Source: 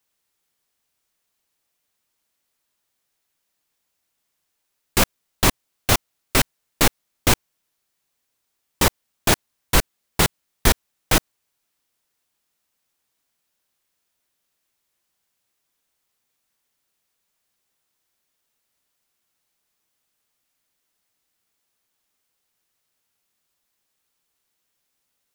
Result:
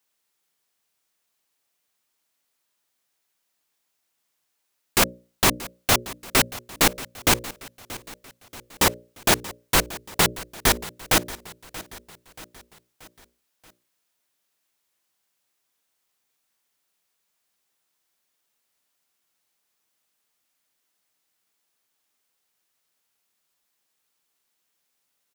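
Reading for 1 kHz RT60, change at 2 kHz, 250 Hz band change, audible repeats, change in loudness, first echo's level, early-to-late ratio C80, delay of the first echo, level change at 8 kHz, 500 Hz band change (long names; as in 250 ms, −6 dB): no reverb audible, 0.0 dB, −2.5 dB, 3, −0.5 dB, −17.5 dB, no reverb audible, 631 ms, 0.0 dB, −1.0 dB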